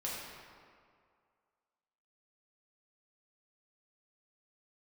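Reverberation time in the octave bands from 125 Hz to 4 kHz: 1.8 s, 1.9 s, 2.1 s, 2.2 s, 1.7 s, 1.3 s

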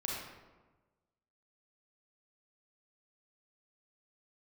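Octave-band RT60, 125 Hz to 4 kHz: 1.5 s, 1.4 s, 1.3 s, 1.2 s, 0.95 s, 0.70 s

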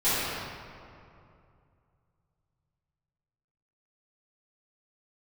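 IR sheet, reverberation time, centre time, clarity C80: 2.6 s, 173 ms, -2.5 dB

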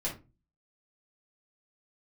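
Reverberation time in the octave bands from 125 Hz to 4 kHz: 0.50 s, 0.45 s, 0.30 s, 0.25 s, 0.25 s, 0.20 s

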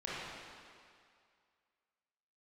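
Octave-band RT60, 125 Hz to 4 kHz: 1.8 s, 1.9 s, 2.1 s, 2.3 s, 2.2 s, 2.0 s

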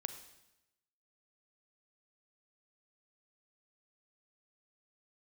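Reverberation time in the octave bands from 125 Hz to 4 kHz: 1.1 s, 1.0 s, 0.95 s, 0.90 s, 0.90 s, 0.90 s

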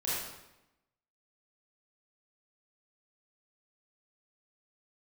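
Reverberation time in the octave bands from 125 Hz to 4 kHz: 1.0 s, 1.1 s, 0.95 s, 0.90 s, 0.85 s, 0.75 s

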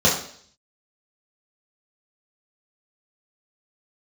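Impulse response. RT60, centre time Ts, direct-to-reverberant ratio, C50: 0.55 s, 33 ms, -5.5 dB, 6.0 dB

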